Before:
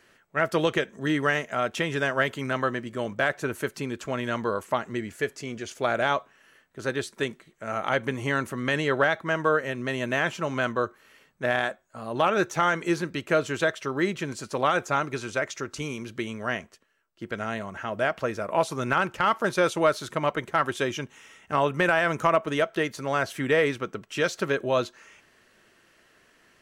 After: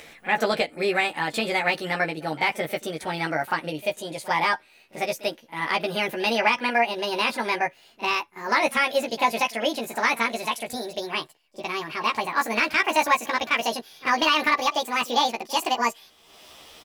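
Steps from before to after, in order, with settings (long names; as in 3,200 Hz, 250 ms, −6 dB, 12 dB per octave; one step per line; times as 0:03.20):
gliding playback speed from 128% → 188%
upward compression, threshold −38 dBFS
double-tracking delay 13 ms −3 dB
backwards echo 41 ms −18.5 dB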